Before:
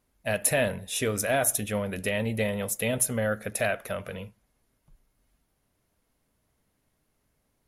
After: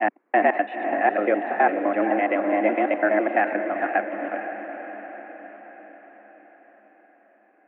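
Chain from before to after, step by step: slices in reverse order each 84 ms, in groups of 4; mistuned SSB +99 Hz 160–2000 Hz; diffused feedback echo 0.462 s, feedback 59%, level -8 dB; gain +7.5 dB

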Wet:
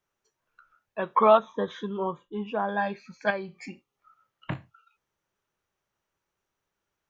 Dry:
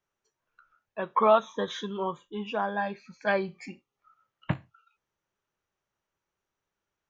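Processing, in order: 1.37–2.69 LPF 1200 Hz 6 dB/oct; 3.3–4.52 compressor 2:1, threshold -38 dBFS, peak gain reduction 9.5 dB; gain +2.5 dB

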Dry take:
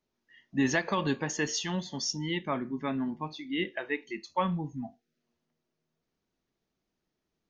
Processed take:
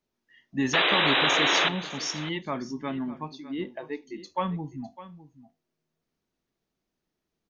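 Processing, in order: 0.73–1.69 painted sound noise 270–4000 Hz -23 dBFS; 3.35–4.22 band shelf 2100 Hz -10 dB; on a send: echo 0.605 s -16 dB

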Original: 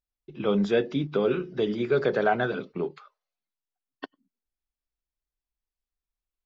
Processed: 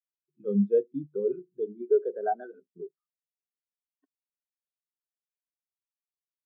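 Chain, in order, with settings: 1.66–2.61 steep high-pass 200 Hz; spectral expander 2.5:1; gain -3 dB

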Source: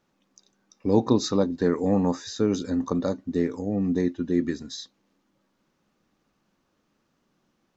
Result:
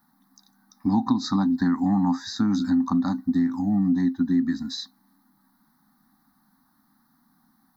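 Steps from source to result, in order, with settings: EQ curve 120 Hz 0 dB, 260 Hz +12 dB, 480 Hz -30 dB, 770 Hz +9 dB, 1900 Hz +2 dB, 2700 Hz -27 dB, 4000 Hz 0 dB, 7100 Hz -13 dB, 11000 Hz +12 dB; compressor 5:1, threshold -19 dBFS, peak gain reduction 11 dB; high shelf 2700 Hz +10 dB

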